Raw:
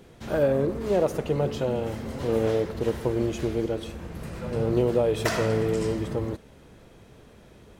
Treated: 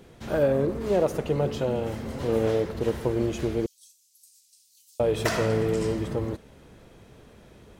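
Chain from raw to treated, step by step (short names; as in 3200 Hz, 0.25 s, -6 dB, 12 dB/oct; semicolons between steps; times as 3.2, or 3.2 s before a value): 3.66–5 inverse Chebyshev high-pass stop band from 1300 Hz, stop band 70 dB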